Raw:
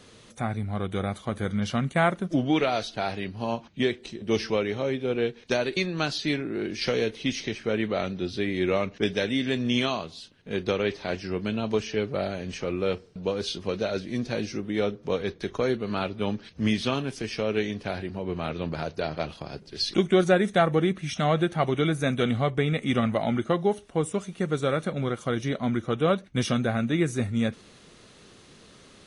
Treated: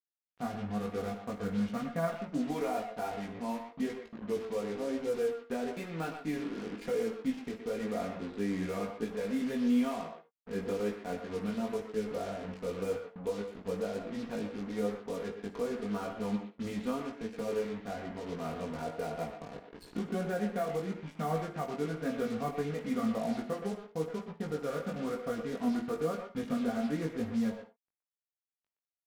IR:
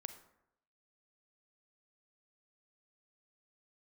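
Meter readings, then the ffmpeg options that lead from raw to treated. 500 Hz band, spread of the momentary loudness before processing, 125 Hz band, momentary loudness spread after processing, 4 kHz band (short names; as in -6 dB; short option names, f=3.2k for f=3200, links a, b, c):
-8.0 dB, 7 LU, -12.5 dB, 6 LU, -17.0 dB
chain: -filter_complex "[0:a]lowpass=1.4k,aecho=1:1:4.2:0.75,alimiter=limit=-15.5dB:level=0:latency=1:release=465,acrusher=bits=5:mix=0:aa=0.5,asplit=2[a][b];[b]adelay=120,highpass=300,lowpass=3.4k,asoftclip=type=hard:threshold=-25dB,volume=-6dB[c];[a][c]amix=inputs=2:normalize=0[d];[1:a]atrim=start_sample=2205,atrim=end_sample=3969[e];[d][e]afir=irnorm=-1:irlink=0,flanger=delay=18:depth=2.8:speed=0.99,volume=-1.5dB"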